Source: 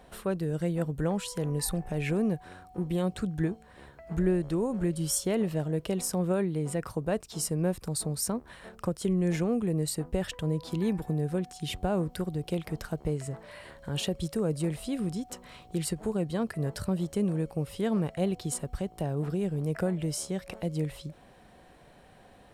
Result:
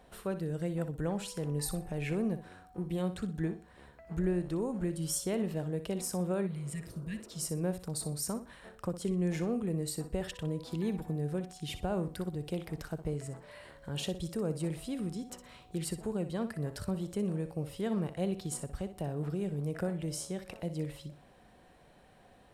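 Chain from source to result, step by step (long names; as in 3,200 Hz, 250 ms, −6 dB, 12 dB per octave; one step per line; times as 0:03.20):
flutter between parallel walls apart 10.5 metres, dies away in 0.32 s
healed spectral selection 0:06.49–0:07.44, 240–1,600 Hz after
level −5 dB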